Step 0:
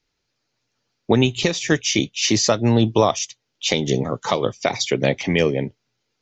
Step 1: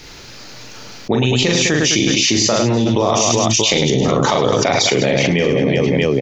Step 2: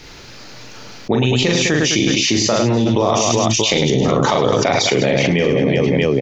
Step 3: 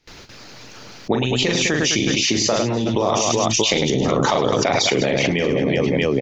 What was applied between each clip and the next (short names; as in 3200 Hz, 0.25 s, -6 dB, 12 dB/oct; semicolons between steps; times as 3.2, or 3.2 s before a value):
on a send: reverse bouncing-ball echo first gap 40 ms, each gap 1.6×, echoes 5; on the sum: fast leveller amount 100%; gain -4 dB
high shelf 5400 Hz -5.5 dB
gate with hold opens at -28 dBFS; harmonic-percussive split harmonic -7 dB